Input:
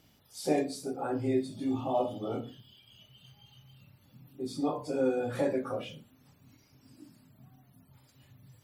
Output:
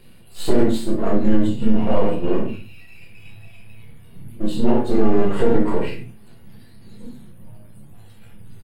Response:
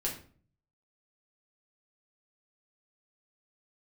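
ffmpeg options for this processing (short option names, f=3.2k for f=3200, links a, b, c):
-filter_complex "[0:a]aeval=exprs='if(lt(val(0),0),0.251*val(0),val(0))':c=same,equalizer=f=7.3k:t=o:w=0.37:g=-15,asetrate=36028,aresample=44100,atempo=1.22405[a];[1:a]atrim=start_sample=2205,atrim=end_sample=6615[b];[a][b]afir=irnorm=-1:irlink=0,alimiter=level_in=15dB:limit=-1dB:release=50:level=0:latency=1,volume=-3dB"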